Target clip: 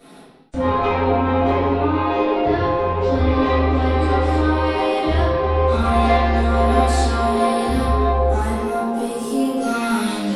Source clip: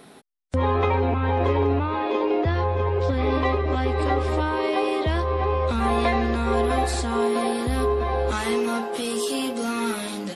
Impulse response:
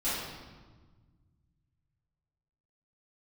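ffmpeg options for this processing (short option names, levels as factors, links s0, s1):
-filter_complex "[0:a]asoftclip=type=tanh:threshold=0.178,asettb=1/sr,asplit=3[s0][s1][s2];[s0]atrim=end=8.064[s3];[s1]atrim=start=8.06:end=9.61,asetpts=PTS-STARTPTS,afade=t=in:d=0.004:c=qsin,afade=t=out:st=1.546:d=0.004:c=qsin,equalizer=f=3700:t=o:w=2.3:g=-12[s4];[s2]atrim=start=9.606[s5];[s3][s4]acrossfade=d=0.004:c1=hsin:c2=qsin[s6];[s6][s5]acrossfade=d=0.004:c1=qsin:c2=hsin[s7];[1:a]atrim=start_sample=2205,afade=t=out:st=0.36:d=0.01,atrim=end_sample=16317[s8];[s7][s8]afir=irnorm=-1:irlink=0,volume=0.75"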